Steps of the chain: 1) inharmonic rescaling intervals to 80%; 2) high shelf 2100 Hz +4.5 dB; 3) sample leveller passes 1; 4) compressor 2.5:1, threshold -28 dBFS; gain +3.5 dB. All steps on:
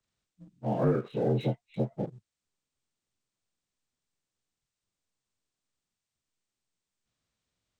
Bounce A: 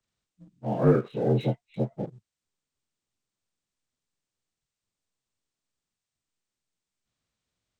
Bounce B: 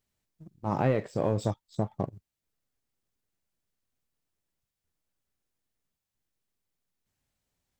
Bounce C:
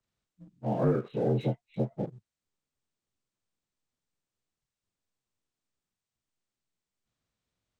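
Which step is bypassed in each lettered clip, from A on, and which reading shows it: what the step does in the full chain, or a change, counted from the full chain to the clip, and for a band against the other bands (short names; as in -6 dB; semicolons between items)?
4, momentary loudness spread change +5 LU; 1, 2 kHz band +5.5 dB; 2, 4 kHz band -3.0 dB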